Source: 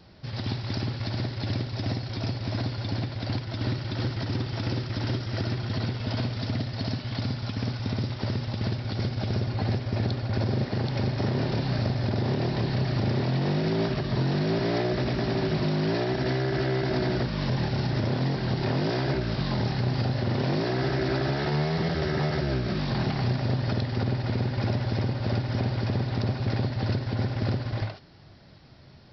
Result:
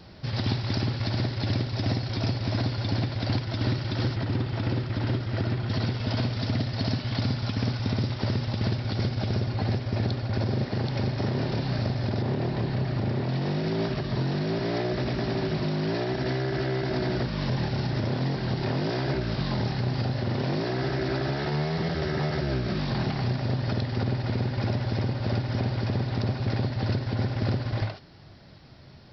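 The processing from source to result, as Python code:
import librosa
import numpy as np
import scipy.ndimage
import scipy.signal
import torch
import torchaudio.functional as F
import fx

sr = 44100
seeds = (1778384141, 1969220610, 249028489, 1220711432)

y = fx.high_shelf(x, sr, hz=4300.0, db=-9.5, at=(12.22, 13.29))
y = fx.rider(y, sr, range_db=5, speed_s=0.5)
y = fx.air_absorb(y, sr, metres=170.0, at=(4.16, 5.69))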